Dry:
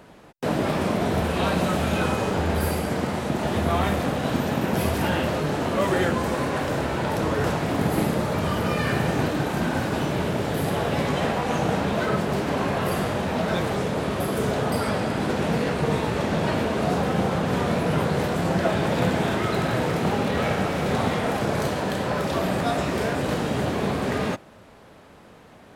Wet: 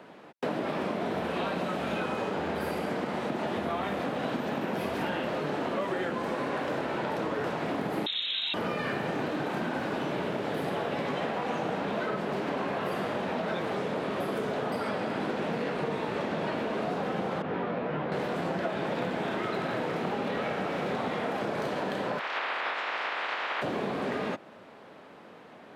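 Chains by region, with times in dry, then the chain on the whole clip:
8.06–8.54 bell 3000 Hz -5 dB 1.1 oct + inverted band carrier 3900 Hz + core saturation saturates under 1100 Hz
17.42–18.12 LPF 2700 Hz + detuned doubles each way 19 cents
22.18–23.61 spectral limiter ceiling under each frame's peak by 28 dB + BPF 620–2100 Hz
whole clip: HPF 85 Hz; three-band isolator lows -14 dB, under 180 Hz, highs -12 dB, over 4300 Hz; compressor, threshold -28 dBFS

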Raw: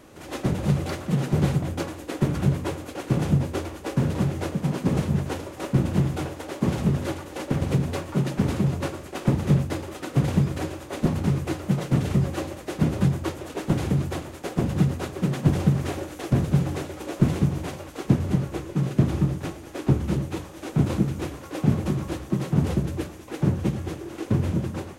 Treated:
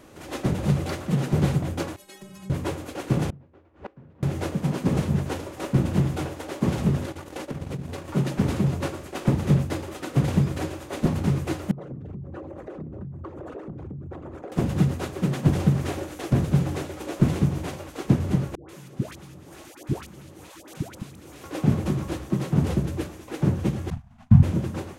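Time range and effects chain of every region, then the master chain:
1.96–2.5 high shelf 2100 Hz +11 dB + metallic resonator 190 Hz, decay 0.33 s, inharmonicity 0.008 + compressor 3:1, threshold -41 dBFS
3.3–4.23 LPF 2100 Hz + flipped gate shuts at -25 dBFS, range -26 dB
7.05–8.08 compressor 4:1, threshold -30 dBFS + transient shaper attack +2 dB, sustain -12 dB
11.71–14.52 formant sharpening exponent 2 + bell 1200 Hz +9.5 dB 1.9 oct + compressor 10:1, threshold -33 dBFS
18.55–21.44 tilt +2 dB/oct + level quantiser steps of 22 dB + dispersion highs, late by 0.139 s, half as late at 750 Hz
23.9–24.43 Chebyshev band-stop 250–650 Hz, order 5 + expander -34 dBFS + tilt -3.5 dB/oct
whole clip: dry

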